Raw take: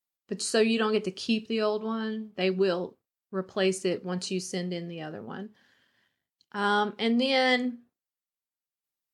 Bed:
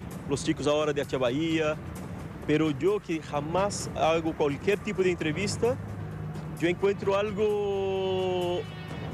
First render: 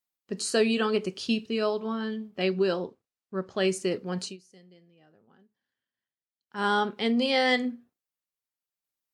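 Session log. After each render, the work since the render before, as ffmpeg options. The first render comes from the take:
ffmpeg -i in.wav -filter_complex "[0:a]asettb=1/sr,asplit=3[link_01][link_02][link_03];[link_01]atrim=end=2.434[link_04];[link_02]atrim=start=2.43:end=3.6,asetpts=PTS-STARTPTS,afade=type=in:duration=0.004:curve=qsin,afade=type=out:start_time=1.166:duration=0.004:curve=qsin,lowpass=8300[link_05];[link_03]atrim=start=3.596[link_06];[link_04][link_05]acrossfade=duration=0.004:curve1=hsin:curve2=qsin[link_07];[link_07][link_06]acrossfade=duration=0.004:curve1=qsin:curve2=hsin,asplit=3[link_08][link_09][link_10];[link_08]atrim=end=4.37,asetpts=PTS-STARTPTS,afade=type=out:start_time=4.23:duration=0.14:silence=0.0749894[link_11];[link_09]atrim=start=4.37:end=6.47,asetpts=PTS-STARTPTS,volume=-22.5dB[link_12];[link_10]atrim=start=6.47,asetpts=PTS-STARTPTS,afade=type=in:duration=0.14:silence=0.0749894[link_13];[link_11][link_12][link_13]concat=n=3:v=0:a=1" out.wav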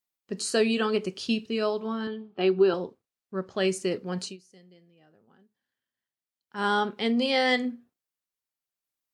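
ffmpeg -i in.wav -filter_complex "[0:a]asettb=1/sr,asplit=3[link_01][link_02][link_03];[link_01]atrim=end=2.074[link_04];[link_02]atrim=start=2.07:end=2.74,asetpts=PTS-STARTPTS,afade=type=in:duration=0.004:curve=qsin,afade=type=out:start_time=0.666:duration=0.004:curve=qsin,highpass=120,equalizer=frequency=230:width_type=q:width=4:gain=-5,equalizer=frequency=380:width_type=q:width=4:gain=6,equalizer=frequency=560:width_type=q:width=4:gain=-5,equalizer=frequency=800:width_type=q:width=4:gain=7,equalizer=frequency=1300:width_type=q:width=4:gain=4,equalizer=frequency=2000:width_type=q:width=4:gain=-7,lowpass=frequency=4100:width=0.5412,lowpass=frequency=4100:width=1.3066[link_05];[link_03]atrim=start=2.736[link_06];[link_04][link_05]acrossfade=duration=0.004:curve1=hsin:curve2=qsin[link_07];[link_07][link_06]acrossfade=duration=0.004:curve1=qsin:curve2=hsin" out.wav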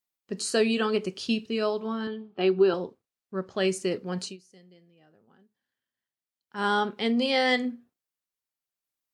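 ffmpeg -i in.wav -af anull out.wav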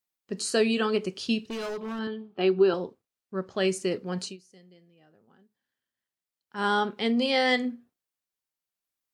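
ffmpeg -i in.wav -filter_complex "[0:a]asettb=1/sr,asplit=3[link_01][link_02][link_03];[link_01]atrim=end=1.414[link_04];[link_02]atrim=start=1.41:end=1.99,asetpts=PTS-STARTPTS,afade=type=in:duration=0.004:curve=qsin,afade=type=out:start_time=0.576:duration=0.004:curve=qsin,asoftclip=type=hard:threshold=-31dB[link_05];[link_03]atrim=start=1.986[link_06];[link_04][link_05]acrossfade=duration=0.004:curve1=hsin:curve2=qsin[link_07];[link_07][link_06]acrossfade=duration=0.004:curve1=qsin:curve2=hsin" out.wav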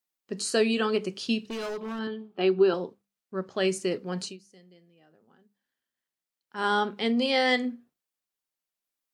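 ffmpeg -i in.wav -af "equalizer=frequency=79:width_type=o:width=0.53:gain=-14.5,bandreject=frequency=50:width_type=h:width=6,bandreject=frequency=100:width_type=h:width=6,bandreject=frequency=150:width_type=h:width=6,bandreject=frequency=200:width_type=h:width=6" out.wav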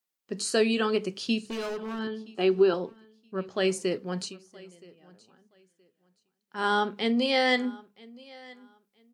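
ffmpeg -i in.wav -af "aecho=1:1:972|1944:0.0708|0.0149" out.wav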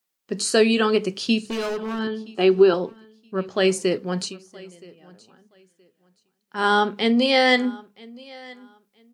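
ffmpeg -i in.wav -af "volume=6.5dB" out.wav

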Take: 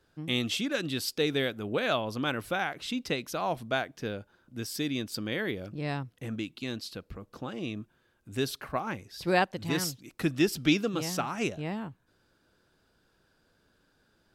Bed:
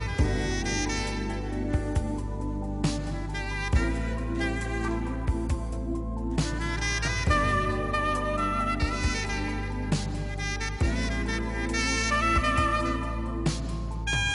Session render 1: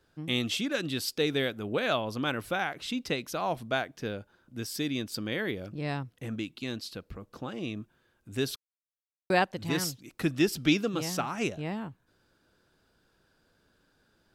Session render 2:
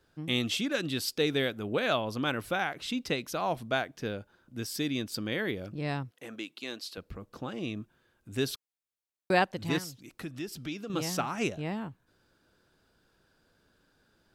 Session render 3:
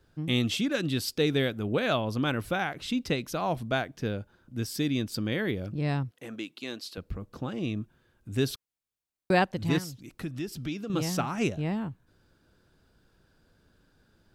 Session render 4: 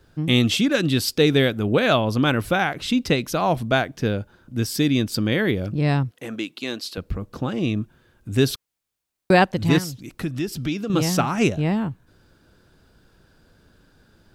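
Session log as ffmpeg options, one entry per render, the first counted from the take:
ffmpeg -i in.wav -filter_complex "[0:a]asplit=3[link_01][link_02][link_03];[link_01]atrim=end=8.56,asetpts=PTS-STARTPTS,afade=type=out:start_time=8.556:duration=0.004:curve=hsin[link_04];[link_02]atrim=start=8.56:end=9.3,asetpts=PTS-STARTPTS,volume=0[link_05];[link_03]atrim=start=9.3,asetpts=PTS-STARTPTS,afade=type=in:duration=0.004:curve=hsin[link_06];[link_04][link_05][link_06]concat=n=3:v=0:a=1" out.wav
ffmpeg -i in.wav -filter_complex "[0:a]asettb=1/sr,asplit=3[link_01][link_02][link_03];[link_01]atrim=end=6.114[link_04];[link_02]atrim=start=6.11:end=6.98,asetpts=PTS-STARTPTS,afade=type=in:duration=0.004:curve=qsin,afade=type=out:start_time=0.866:duration=0.004:curve=qsin,highpass=380[link_05];[link_03]atrim=start=6.976[link_06];[link_04][link_05]acrossfade=duration=0.004:curve1=hsin:curve2=qsin[link_07];[link_07][link_06]acrossfade=duration=0.004:curve1=qsin:curve2=hsin,asettb=1/sr,asplit=3[link_08][link_09][link_10];[link_08]atrim=end=9.784[link_11];[link_09]atrim=start=9.78:end=10.9,asetpts=PTS-STARTPTS,afade=type=in:duration=0.004:curve=qsin,afade=type=out:start_time=1.116:duration=0.004:curve=qsin,acompressor=threshold=-44dB:ratio=2:attack=3.2:release=140:knee=1:detection=peak[link_12];[link_10]atrim=start=10.896[link_13];[link_11][link_12]acrossfade=duration=0.004:curve1=hsin:curve2=qsin[link_14];[link_14][link_13]acrossfade=duration=0.004:curve1=qsin:curve2=hsin" out.wav
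ffmpeg -i in.wav -af "lowshelf=frequency=220:gain=9.5" out.wav
ffmpeg -i in.wav -af "volume=8.5dB,alimiter=limit=-3dB:level=0:latency=1" out.wav

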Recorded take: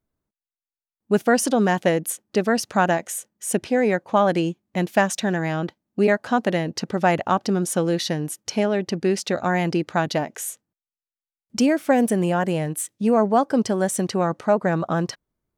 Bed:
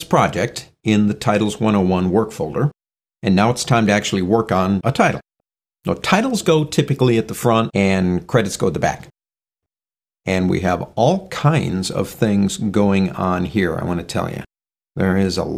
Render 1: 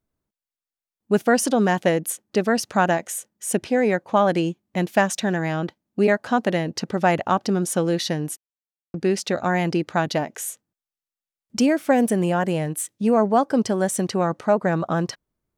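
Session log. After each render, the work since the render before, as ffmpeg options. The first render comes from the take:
ffmpeg -i in.wav -filter_complex "[0:a]asplit=3[link_01][link_02][link_03];[link_01]atrim=end=8.37,asetpts=PTS-STARTPTS,afade=type=out:start_time=8.366:duration=0.004:curve=hsin[link_04];[link_02]atrim=start=8.37:end=8.94,asetpts=PTS-STARTPTS,volume=0[link_05];[link_03]atrim=start=8.94,asetpts=PTS-STARTPTS,afade=type=in:duration=0.004:curve=hsin[link_06];[link_04][link_05][link_06]concat=n=3:v=0:a=1" out.wav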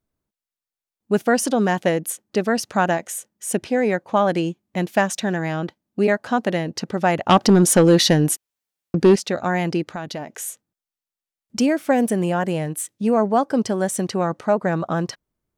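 ffmpeg -i in.wav -filter_complex "[0:a]asettb=1/sr,asplit=3[link_01][link_02][link_03];[link_01]atrim=end=7.294[link_04];[link_02]atrim=start=7.29:end=9.16,asetpts=PTS-STARTPTS,afade=type=in:duration=0.004:curve=qsin,afade=type=out:start_time=1.866:duration=0.004:curve=qsin,aeval=exprs='0.473*sin(PI/2*2*val(0)/0.473)':channel_layout=same[link_05];[link_03]atrim=start=9.156[link_06];[link_04][link_05]acrossfade=duration=0.004:curve1=hsin:curve2=qsin[link_07];[link_07][link_06]acrossfade=duration=0.004:curve1=qsin:curve2=hsin,asplit=3[link_08][link_09][link_10];[link_08]afade=type=out:start_time=9.83:duration=0.02[link_11];[link_09]acompressor=threshold=-29dB:ratio=2.5:attack=3.2:release=140:knee=1:detection=peak,afade=type=in:start_time=9.83:duration=0.02,afade=type=out:start_time=10.26:duration=0.02[link_12];[link_10]afade=type=in:start_time=10.26:duration=0.02[link_13];[link_11][link_12][link_13]amix=inputs=3:normalize=0" out.wav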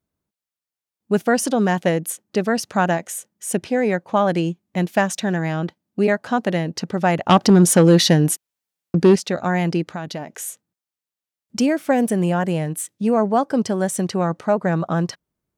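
ffmpeg -i in.wav -af "highpass=47,equalizer=frequency=170:width=4.1:gain=4" out.wav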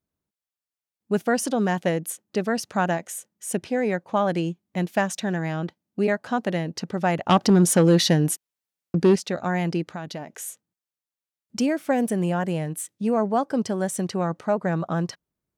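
ffmpeg -i in.wav -af "volume=-4.5dB" out.wav

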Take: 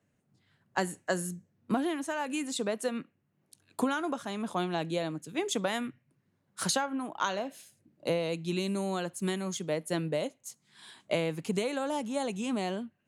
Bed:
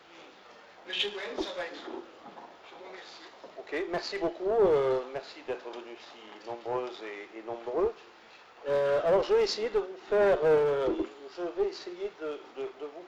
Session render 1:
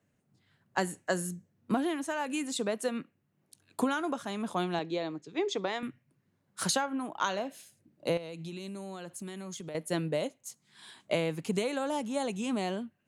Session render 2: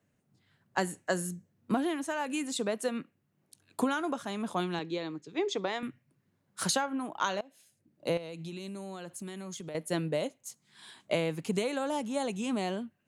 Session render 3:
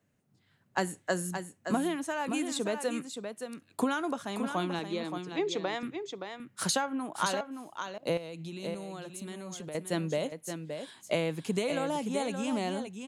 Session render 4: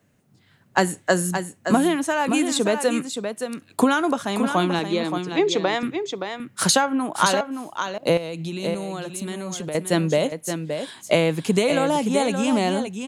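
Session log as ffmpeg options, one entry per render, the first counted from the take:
ffmpeg -i in.wav -filter_complex "[0:a]asettb=1/sr,asplit=3[link_01][link_02][link_03];[link_01]atrim=end=4.794[link_04];[link_02]atrim=start=4.79:end=5.83,asetpts=PTS-STARTPTS,afade=type=in:duration=0.004:curve=qsin,afade=type=out:start_time=1.036:duration=0.004:curve=qsin,highpass=140,equalizer=frequency=160:width_type=q:width=4:gain=-4,equalizer=frequency=230:width_type=q:width=4:gain=-10,equalizer=frequency=400:width_type=q:width=4:gain=5,equalizer=frequency=570:width_type=q:width=4:gain=-4,equalizer=frequency=1500:width_type=q:width=4:gain=-5,equalizer=frequency=2900:width_type=q:width=4:gain=-5,lowpass=frequency=5500:width=0.5412,lowpass=frequency=5500:width=1.3066[link_05];[link_03]atrim=start=5.826[link_06];[link_04][link_05]acrossfade=duration=0.004:curve1=hsin:curve2=qsin[link_07];[link_07][link_06]acrossfade=duration=0.004:curve1=qsin:curve2=hsin,asettb=1/sr,asplit=3[link_08][link_09][link_10];[link_08]atrim=end=8.174[link_11];[link_09]atrim=start=8.17:end=9.75,asetpts=PTS-STARTPTS,afade=type=in:duration=0.004:curve=qsin,afade=type=out:start_time=1.576:duration=0.004:curve=qsin,acompressor=threshold=-37dB:ratio=12:attack=3.2:release=140:knee=1:detection=peak[link_12];[link_10]atrim=start=9.746[link_13];[link_11][link_12]acrossfade=duration=0.004:curve1=hsin:curve2=qsin[link_14];[link_14][link_13]acrossfade=duration=0.004:curve1=qsin:curve2=hsin" out.wav
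ffmpeg -i in.wav -filter_complex "[0:a]asettb=1/sr,asplit=3[link_01][link_02][link_03];[link_01]atrim=end=4.604[link_04];[link_02]atrim=start=4.6:end=5.27,asetpts=PTS-STARTPTS,afade=type=in:duration=0.004:curve=qsin,afade=type=out:start_time=0.666:duration=0.004:curve=qsin,equalizer=frequency=670:width_type=o:width=0.47:gain=-9[link_05];[link_03]atrim=start=5.266[link_06];[link_04][link_05]acrossfade=duration=0.004:curve1=hsin:curve2=qsin[link_07];[link_07][link_06]acrossfade=duration=0.004:curve1=qsin:curve2=hsin,asplit=2[link_08][link_09];[link_08]atrim=end=7.41,asetpts=PTS-STARTPTS,afade=type=out:start_time=7.406:duration=0.004:curve=hsin:silence=0.0749894[link_10];[link_09]atrim=start=7.41,asetpts=PTS-STARTPTS,afade=type=in:duration=0.76:silence=0.0749894[link_11];[link_10][link_11]concat=n=2:v=0:a=1" out.wav
ffmpeg -i in.wav -af "aecho=1:1:572:0.422" out.wav
ffmpeg -i in.wav -af "volume=11dB" out.wav

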